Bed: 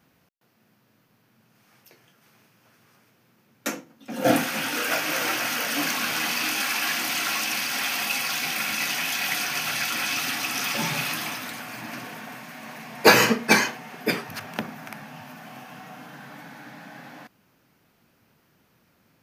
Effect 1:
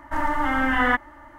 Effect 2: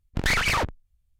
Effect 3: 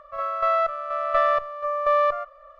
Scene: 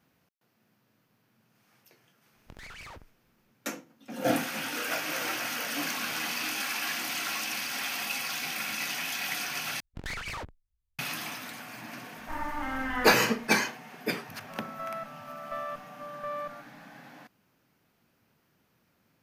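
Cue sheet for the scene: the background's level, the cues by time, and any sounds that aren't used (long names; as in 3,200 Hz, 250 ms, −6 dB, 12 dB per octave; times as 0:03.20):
bed −6.5 dB
0:02.33: mix in 2 −12 dB + downward compressor 12 to 1, threshold −30 dBFS
0:09.80: overwrite with 2 −14 dB + floating-point word with a short mantissa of 6 bits
0:12.17: mix in 1 −11 dB
0:14.37: mix in 3 −16 dB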